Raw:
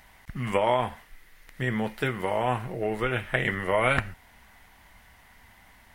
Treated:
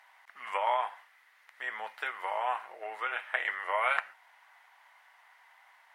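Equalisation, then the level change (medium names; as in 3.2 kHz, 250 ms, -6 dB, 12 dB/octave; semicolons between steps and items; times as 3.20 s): high-pass 870 Hz 24 dB/octave; tilt EQ -4 dB/octave; 0.0 dB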